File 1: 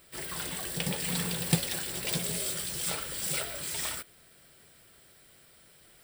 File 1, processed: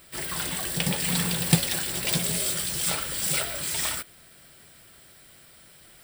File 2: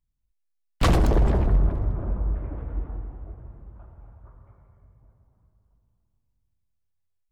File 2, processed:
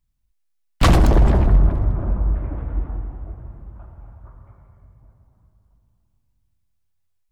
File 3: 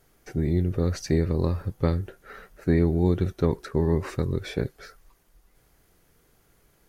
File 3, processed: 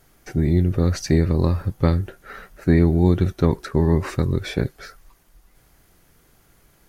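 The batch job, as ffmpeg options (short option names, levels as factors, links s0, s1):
-af "equalizer=f=450:t=o:w=0.48:g=-4.5,volume=2"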